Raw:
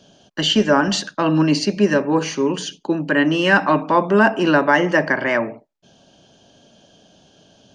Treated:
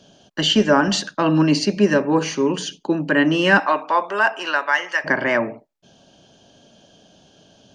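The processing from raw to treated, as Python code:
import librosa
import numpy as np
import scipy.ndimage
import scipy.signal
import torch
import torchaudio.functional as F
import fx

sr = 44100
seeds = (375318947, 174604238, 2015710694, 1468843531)

y = fx.highpass(x, sr, hz=fx.line((3.59, 520.0), (5.04, 1400.0)), slope=12, at=(3.59, 5.04), fade=0.02)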